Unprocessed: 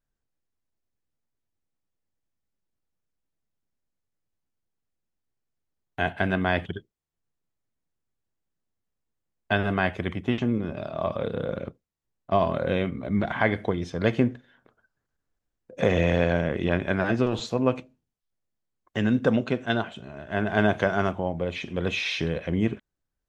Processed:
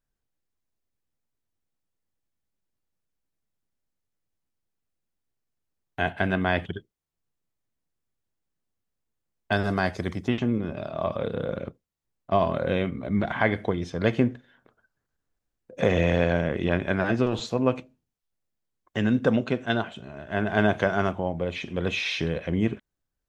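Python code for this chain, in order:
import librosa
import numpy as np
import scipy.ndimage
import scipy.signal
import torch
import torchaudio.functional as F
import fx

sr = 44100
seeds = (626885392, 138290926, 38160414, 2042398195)

y = fx.high_shelf_res(x, sr, hz=3800.0, db=8.5, q=3.0, at=(9.52, 10.28))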